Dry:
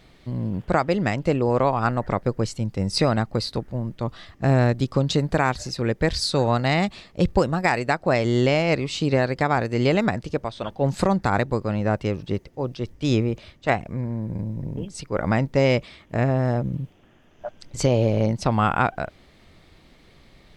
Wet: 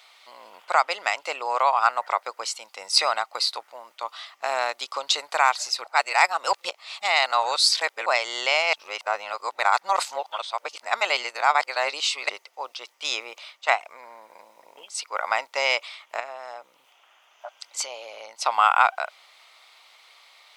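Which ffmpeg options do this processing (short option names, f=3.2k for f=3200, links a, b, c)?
-filter_complex "[0:a]asettb=1/sr,asplit=3[a][b][c];[a]atrim=end=16.204[d];[b]atrim=start=16.2:end=18.44,asetpts=PTS-STARTPTS,afade=t=in:d=0.004:c=qsin,afade=t=out:st=2.236:d=0.004:c=qsin,acompressor=threshold=-31dB:ratio=2:attack=3.2:release=140:knee=1:detection=peak[e];[c]atrim=start=18.436[f];[d][e]acrossfade=d=0.004:c1=hsin:c2=qsin[g];[g][f]acrossfade=d=0.004:c1=qsin:c2=hsin,asplit=5[h][i][j][k][l];[h]atrim=end=5.842[m];[i]atrim=start=5.838:end=8.062,asetpts=PTS-STARTPTS,areverse[n];[j]atrim=start=8.058:end=8.732[o];[k]atrim=start=8.728:end=12.292,asetpts=PTS-STARTPTS,areverse[p];[l]atrim=start=12.288[q];[m][n]acrossfade=d=0.004:c1=hsin:c2=hsin[r];[r][o]acrossfade=d=0.004:c1=hsin:c2=hsin[s];[s][p]acrossfade=d=0.004:c1=hsin:c2=hsin[t];[t][q]acrossfade=d=0.004:c1=hsin:c2=hsin,highpass=f=840:w=0.5412,highpass=f=840:w=1.3066,equalizer=f=1.7k:w=6.8:g=-11,volume=6.5dB"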